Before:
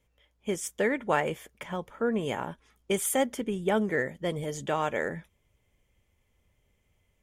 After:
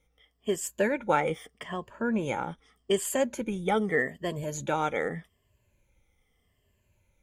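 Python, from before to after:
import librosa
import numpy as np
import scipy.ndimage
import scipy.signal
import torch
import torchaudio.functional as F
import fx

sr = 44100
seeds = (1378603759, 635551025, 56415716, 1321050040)

y = fx.spec_ripple(x, sr, per_octave=1.4, drift_hz=-0.82, depth_db=13)
y = fx.peak_eq(y, sr, hz=13000.0, db=-14.0, octaves=0.35, at=(0.92, 3.37))
y = y * librosa.db_to_amplitude(-1.0)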